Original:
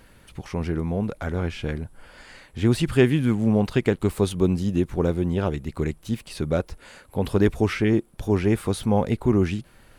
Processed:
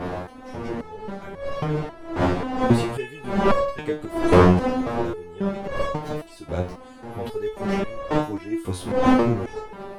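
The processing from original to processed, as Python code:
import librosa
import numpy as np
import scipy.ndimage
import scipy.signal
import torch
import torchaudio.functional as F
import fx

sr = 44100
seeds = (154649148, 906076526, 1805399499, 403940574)

y = fx.dmg_wind(x, sr, seeds[0], corner_hz=630.0, level_db=-18.0)
y = fx.resonator_held(y, sr, hz=3.7, low_hz=90.0, high_hz=560.0)
y = y * librosa.db_to_amplitude(6.0)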